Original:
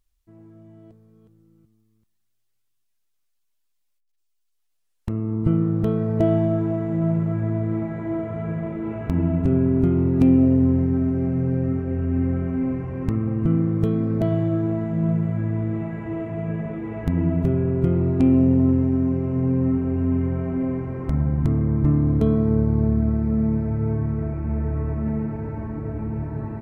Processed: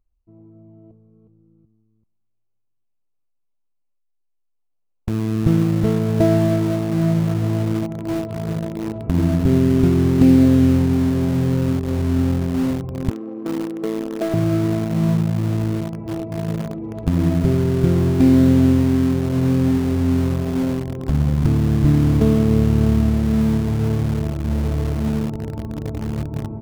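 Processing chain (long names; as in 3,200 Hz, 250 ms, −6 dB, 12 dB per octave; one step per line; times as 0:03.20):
adaptive Wiener filter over 25 samples
0:13.10–0:14.34: high-pass filter 290 Hz 24 dB per octave
in parallel at −10.5 dB: bit reduction 4 bits
on the sum: level +1.5 dB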